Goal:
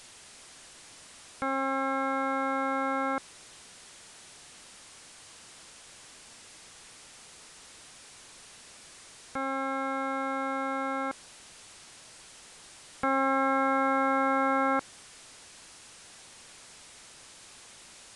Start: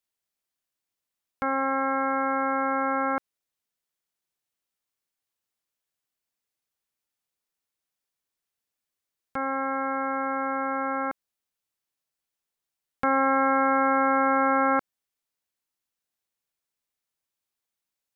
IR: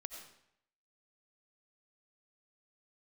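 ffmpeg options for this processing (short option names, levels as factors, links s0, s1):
-af "aeval=exprs='val(0)+0.5*0.015*sgn(val(0))':c=same,aresample=22050,aresample=44100,volume=0.596"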